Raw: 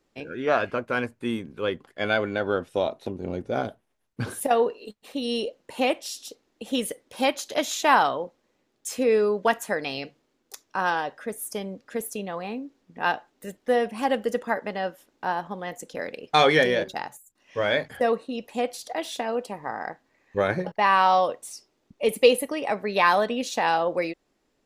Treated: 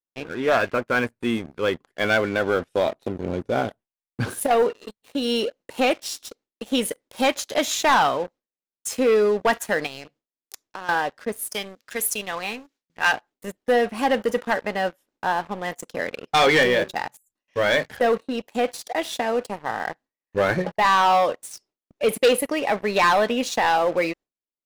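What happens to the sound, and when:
9.86–10.89 compressor 5:1, threshold -35 dBFS
11.54–13.13 tilt shelf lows -8.5 dB
whole clip: gate with hold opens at -51 dBFS; dynamic EQ 1900 Hz, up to +3 dB, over -39 dBFS, Q 1.3; sample leveller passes 3; gain -7 dB

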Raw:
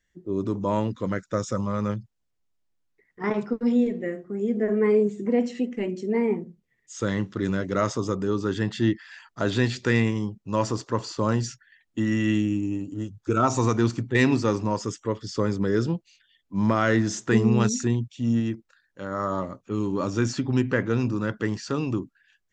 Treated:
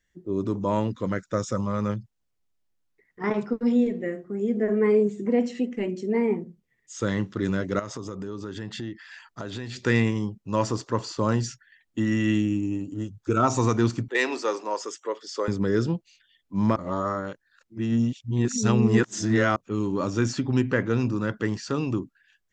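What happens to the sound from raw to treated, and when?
7.79–9.85 compressor 5:1, threshold -31 dBFS
14.08–15.48 HPF 390 Hz 24 dB/oct
16.76–19.56 reverse

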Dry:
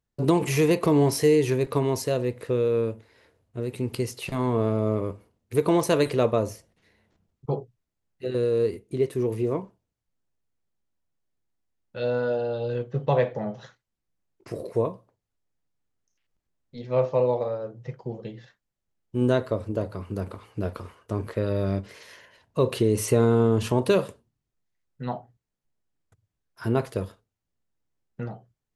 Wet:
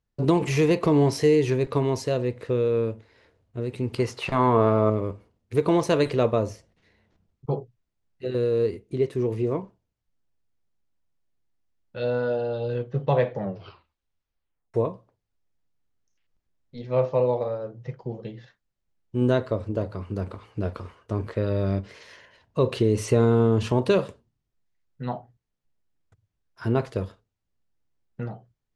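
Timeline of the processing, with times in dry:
3.98–4.9 bell 1100 Hz +11 dB 2.1 oct
13.37 tape stop 1.37 s
whole clip: LPF 6400 Hz 12 dB/oct; low shelf 74 Hz +5.5 dB

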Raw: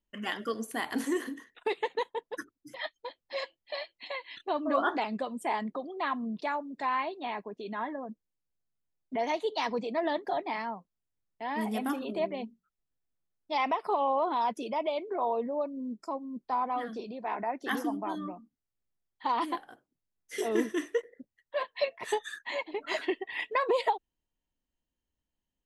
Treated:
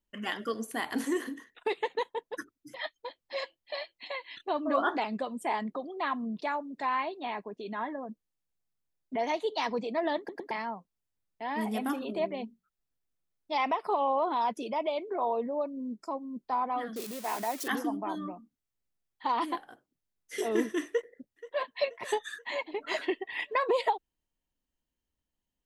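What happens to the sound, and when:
10.18 stutter in place 0.11 s, 3 plays
16.96–17.68 switching spikes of -28.5 dBFS
20.88–21.69 echo throw 0.48 s, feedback 50%, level -16.5 dB

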